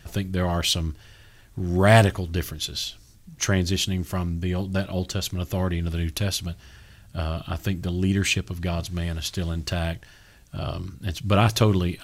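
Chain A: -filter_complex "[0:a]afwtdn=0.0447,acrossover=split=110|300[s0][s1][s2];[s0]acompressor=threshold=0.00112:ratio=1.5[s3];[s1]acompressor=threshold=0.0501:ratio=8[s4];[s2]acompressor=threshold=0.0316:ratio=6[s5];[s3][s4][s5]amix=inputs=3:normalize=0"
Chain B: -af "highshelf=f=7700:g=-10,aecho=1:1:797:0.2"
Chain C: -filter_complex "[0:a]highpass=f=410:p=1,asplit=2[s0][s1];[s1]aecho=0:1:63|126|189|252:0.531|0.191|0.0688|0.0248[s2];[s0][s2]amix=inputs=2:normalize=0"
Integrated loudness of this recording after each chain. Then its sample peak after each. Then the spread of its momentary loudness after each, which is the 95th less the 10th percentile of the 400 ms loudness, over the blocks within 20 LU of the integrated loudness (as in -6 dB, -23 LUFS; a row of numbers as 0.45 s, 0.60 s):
-31.0 LUFS, -25.5 LUFS, -27.5 LUFS; -12.5 dBFS, -2.5 dBFS, -2.5 dBFS; 12 LU, 16 LU, 14 LU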